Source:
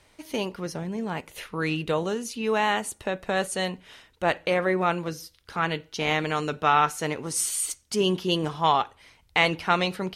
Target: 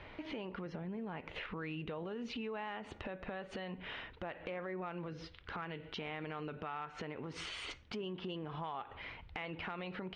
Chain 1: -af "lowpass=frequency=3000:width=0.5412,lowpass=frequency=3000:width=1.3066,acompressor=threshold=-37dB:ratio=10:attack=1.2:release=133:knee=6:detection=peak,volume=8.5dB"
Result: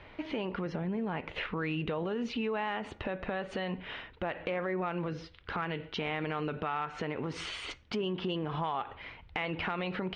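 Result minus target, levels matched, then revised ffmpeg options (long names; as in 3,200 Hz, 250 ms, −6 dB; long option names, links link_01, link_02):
downward compressor: peak gain reduction −8.5 dB
-af "lowpass=frequency=3000:width=0.5412,lowpass=frequency=3000:width=1.3066,acompressor=threshold=-46.5dB:ratio=10:attack=1.2:release=133:knee=6:detection=peak,volume=8.5dB"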